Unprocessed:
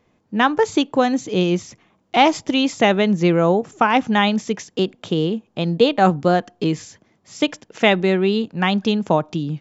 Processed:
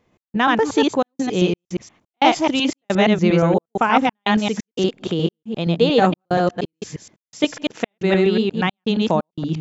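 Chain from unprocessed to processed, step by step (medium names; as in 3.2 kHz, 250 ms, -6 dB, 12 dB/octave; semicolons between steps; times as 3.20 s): chunks repeated in reverse 118 ms, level -0.5 dB; trance gate "x.xxxx.xx.xx.xx" 88 bpm -60 dB; trim -2 dB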